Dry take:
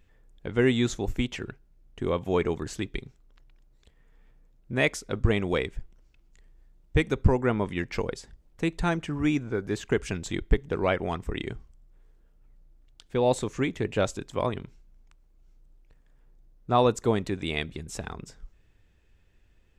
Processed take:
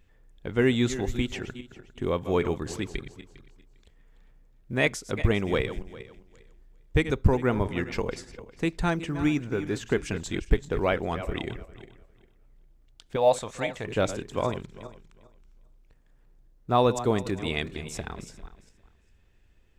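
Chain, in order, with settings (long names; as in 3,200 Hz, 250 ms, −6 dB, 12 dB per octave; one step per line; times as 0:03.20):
feedback delay that plays each chunk backwards 201 ms, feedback 42%, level −12 dB
0:13.16–0:13.87: low shelf with overshoot 470 Hz −7 dB, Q 3
floating-point word with a short mantissa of 6 bits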